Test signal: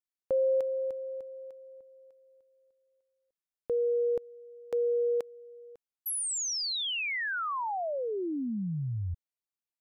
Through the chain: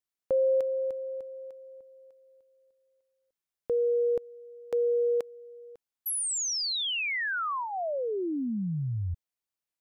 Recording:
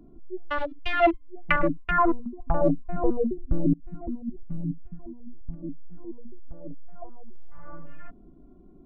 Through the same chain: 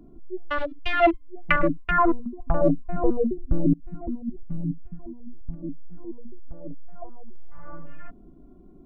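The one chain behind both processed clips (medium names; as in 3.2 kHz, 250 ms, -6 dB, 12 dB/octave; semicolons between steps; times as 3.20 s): dynamic bell 860 Hz, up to -6 dB, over -48 dBFS, Q 6.7; trim +2 dB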